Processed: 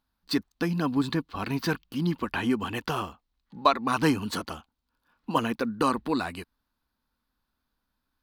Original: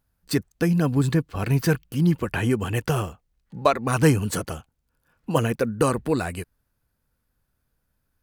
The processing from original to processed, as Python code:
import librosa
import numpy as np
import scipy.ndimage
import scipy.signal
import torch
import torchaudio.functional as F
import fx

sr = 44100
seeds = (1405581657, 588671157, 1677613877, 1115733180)

y = fx.graphic_eq(x, sr, hz=(125, 250, 500, 1000, 4000, 8000), db=(-9, 9, -4, 10, 12, -6))
y = F.gain(torch.from_numpy(y), -7.5).numpy()